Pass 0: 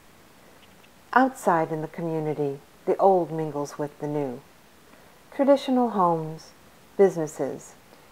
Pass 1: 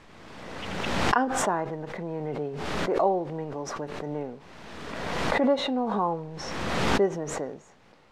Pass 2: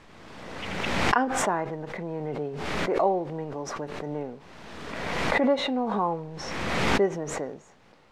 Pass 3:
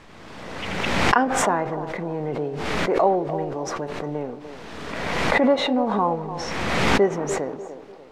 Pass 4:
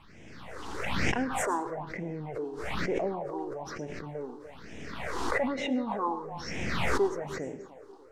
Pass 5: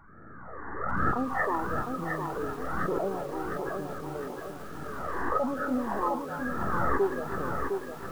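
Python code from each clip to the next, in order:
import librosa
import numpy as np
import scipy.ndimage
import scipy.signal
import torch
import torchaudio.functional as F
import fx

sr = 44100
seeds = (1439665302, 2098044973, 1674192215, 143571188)

y1 = scipy.signal.sosfilt(scipy.signal.butter(2, 4900.0, 'lowpass', fs=sr, output='sos'), x)
y1 = fx.pre_swell(y1, sr, db_per_s=28.0)
y1 = y1 * librosa.db_to_amplitude(-6.0)
y2 = fx.dynamic_eq(y1, sr, hz=2200.0, q=2.9, threshold_db=-47.0, ratio=4.0, max_db=5)
y3 = fx.echo_wet_bandpass(y2, sr, ms=295, feedback_pct=36, hz=500.0, wet_db=-10.0)
y3 = y3 * librosa.db_to_amplitude(4.5)
y4 = fx.rev_plate(y3, sr, seeds[0], rt60_s=0.55, hf_ratio=0.65, predelay_ms=95, drr_db=15.5)
y4 = fx.phaser_stages(y4, sr, stages=6, low_hz=150.0, high_hz=1200.0, hz=1.1, feedback_pct=25)
y4 = y4 * librosa.db_to_amplitude(-6.0)
y5 = fx.freq_compress(y4, sr, knee_hz=1100.0, ratio=4.0)
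y5 = fx.echo_crushed(y5, sr, ms=708, feedback_pct=55, bits=8, wet_db=-5.0)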